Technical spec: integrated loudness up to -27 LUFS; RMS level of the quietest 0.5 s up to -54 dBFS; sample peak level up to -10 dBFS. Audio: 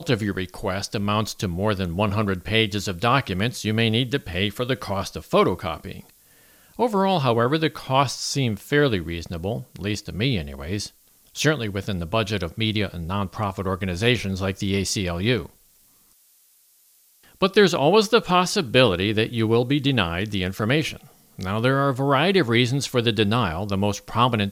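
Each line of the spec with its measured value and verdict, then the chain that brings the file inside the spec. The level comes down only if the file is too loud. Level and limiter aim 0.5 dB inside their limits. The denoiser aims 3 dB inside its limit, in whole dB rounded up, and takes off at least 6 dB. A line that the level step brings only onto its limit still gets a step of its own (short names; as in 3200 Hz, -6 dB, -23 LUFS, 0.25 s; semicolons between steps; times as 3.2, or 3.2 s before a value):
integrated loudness -22.5 LUFS: fail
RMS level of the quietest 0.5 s -58 dBFS: OK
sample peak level -4.0 dBFS: fail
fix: gain -5 dB; limiter -10.5 dBFS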